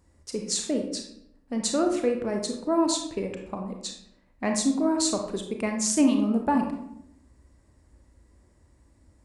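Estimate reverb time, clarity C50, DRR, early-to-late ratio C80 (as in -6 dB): 0.75 s, 5.5 dB, 3.0 dB, 9.0 dB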